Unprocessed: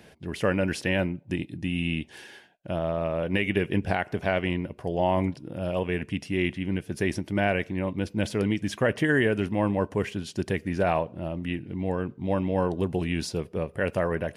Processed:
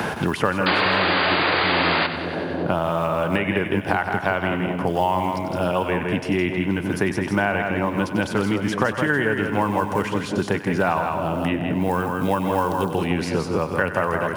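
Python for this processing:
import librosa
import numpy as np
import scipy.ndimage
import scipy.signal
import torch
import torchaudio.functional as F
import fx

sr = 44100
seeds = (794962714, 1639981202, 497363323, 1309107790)

p1 = fx.band_shelf(x, sr, hz=1100.0, db=9.5, octaves=1.1)
p2 = fx.quant_companded(p1, sr, bits=8)
p3 = scipy.signal.sosfilt(scipy.signal.butter(2, 71.0, 'highpass', fs=sr, output='sos'), p2)
p4 = p3 + 10.0 ** (-6.5 / 20.0) * np.pad(p3, (int(163 * sr / 1000.0), 0))[:len(p3)]
p5 = fx.spec_paint(p4, sr, seeds[0], shape='noise', start_s=0.66, length_s=1.41, low_hz=260.0, high_hz=4900.0, level_db=-15.0)
p6 = fx.high_shelf(p5, sr, hz=8500.0, db=7.5, at=(11.81, 12.93))
p7 = p6 + fx.echo_split(p6, sr, split_hz=640.0, low_ms=368, high_ms=94, feedback_pct=52, wet_db=-12.0, dry=0)
y = fx.band_squash(p7, sr, depth_pct=100)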